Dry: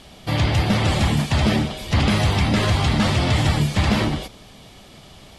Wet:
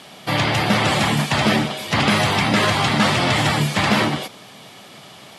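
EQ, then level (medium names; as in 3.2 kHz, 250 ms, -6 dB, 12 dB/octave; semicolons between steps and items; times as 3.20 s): high-pass 120 Hz 24 dB/octave; peaking EQ 1.4 kHz +7 dB 2.7 oct; treble shelf 8.7 kHz +8 dB; 0.0 dB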